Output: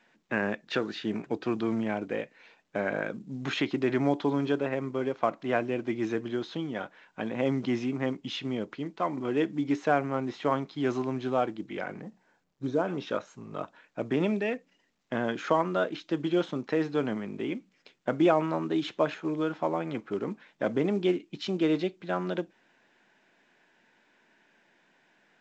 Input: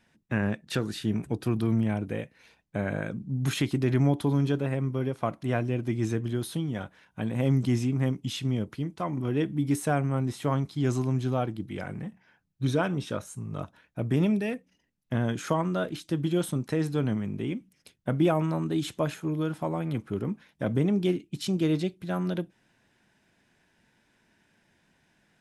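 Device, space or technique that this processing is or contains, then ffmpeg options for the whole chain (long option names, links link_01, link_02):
telephone: -filter_complex "[0:a]asettb=1/sr,asplit=3[link_01][link_02][link_03];[link_01]atrim=end=12.014[link_04];[link_02]atrim=start=12.01:end=12.88,asetpts=PTS-STARTPTS,afade=type=in:duration=0.004:curve=qsin,afade=type=out:start_time=0.866:duration=0.004:curve=qsin,equalizer=frequency=2800:width=0.5:gain=-15[link_05];[link_03]atrim=start=12.876[link_06];[link_04][link_05]acrossfade=duration=0.004:curve1=hsin:curve2=qsin[link_07];[link_07][link_06]acrossfade=duration=0.004:curve1=qsin:curve2=hsin,highpass=320,lowpass=3300,volume=3.5dB" -ar 16000 -c:a pcm_mulaw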